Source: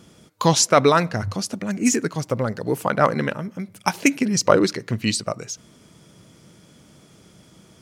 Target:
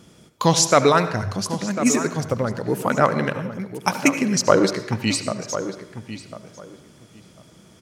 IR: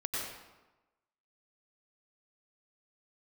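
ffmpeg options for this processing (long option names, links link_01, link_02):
-filter_complex "[0:a]asplit=2[link_01][link_02];[link_02]adelay=1048,lowpass=frequency=2500:poles=1,volume=-11dB,asplit=2[link_03][link_04];[link_04]adelay=1048,lowpass=frequency=2500:poles=1,volume=0.18[link_05];[link_01][link_03][link_05]amix=inputs=3:normalize=0,asplit=2[link_06][link_07];[1:a]atrim=start_sample=2205,asetrate=57330,aresample=44100[link_08];[link_07][link_08]afir=irnorm=-1:irlink=0,volume=-10.5dB[link_09];[link_06][link_09]amix=inputs=2:normalize=0,volume=-1.5dB"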